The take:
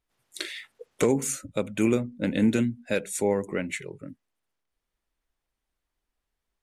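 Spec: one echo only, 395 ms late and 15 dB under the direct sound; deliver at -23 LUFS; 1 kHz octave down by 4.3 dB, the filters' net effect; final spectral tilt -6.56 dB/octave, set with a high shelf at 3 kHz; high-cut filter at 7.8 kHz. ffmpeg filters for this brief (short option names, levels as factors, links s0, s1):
-af "lowpass=7800,equalizer=f=1000:t=o:g=-5,highshelf=f=3000:g=-6.5,aecho=1:1:395:0.178,volume=1.68"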